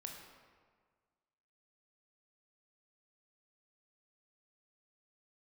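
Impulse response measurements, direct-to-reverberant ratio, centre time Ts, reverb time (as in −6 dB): 1.0 dB, 56 ms, 1.6 s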